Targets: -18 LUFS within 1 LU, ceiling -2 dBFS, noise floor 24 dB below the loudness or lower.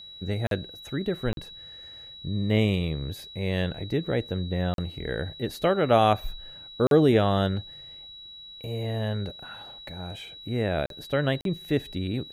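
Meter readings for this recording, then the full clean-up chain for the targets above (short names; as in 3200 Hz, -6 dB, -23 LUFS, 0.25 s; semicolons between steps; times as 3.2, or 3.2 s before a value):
dropouts 6; longest dropout 42 ms; steady tone 3900 Hz; tone level -42 dBFS; loudness -27.0 LUFS; peak -7.0 dBFS; loudness target -18.0 LUFS
-> interpolate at 0.47/1.33/4.74/6.87/10.86/11.41, 42 ms; notch 3900 Hz, Q 30; gain +9 dB; limiter -2 dBFS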